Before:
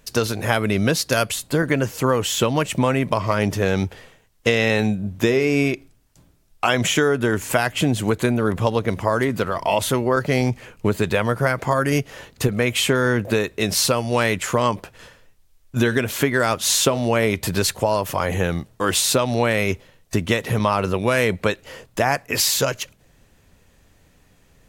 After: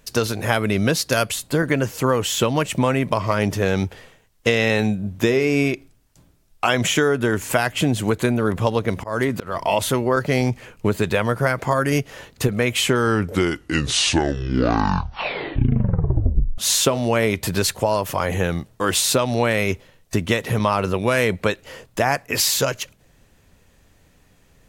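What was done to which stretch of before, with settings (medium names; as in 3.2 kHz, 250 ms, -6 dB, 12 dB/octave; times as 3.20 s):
8.96–9.54 s: slow attack 161 ms
12.76 s: tape stop 3.82 s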